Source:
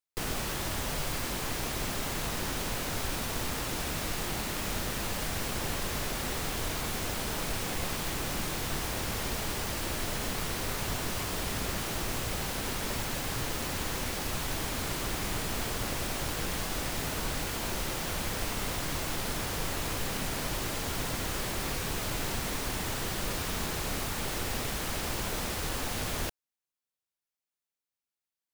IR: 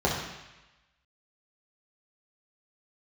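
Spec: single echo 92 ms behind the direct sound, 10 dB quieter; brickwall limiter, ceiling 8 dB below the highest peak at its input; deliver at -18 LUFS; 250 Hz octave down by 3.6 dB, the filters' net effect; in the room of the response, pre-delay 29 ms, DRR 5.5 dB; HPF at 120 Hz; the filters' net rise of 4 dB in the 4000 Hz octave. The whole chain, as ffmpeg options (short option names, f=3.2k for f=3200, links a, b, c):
-filter_complex "[0:a]highpass=120,equalizer=f=250:t=o:g=-4.5,equalizer=f=4k:t=o:g=5,alimiter=level_in=4dB:limit=-24dB:level=0:latency=1,volume=-4dB,aecho=1:1:92:0.316,asplit=2[a][b];[1:a]atrim=start_sample=2205,adelay=29[c];[b][c]afir=irnorm=-1:irlink=0,volume=-19.5dB[d];[a][d]amix=inputs=2:normalize=0,volume=16.5dB"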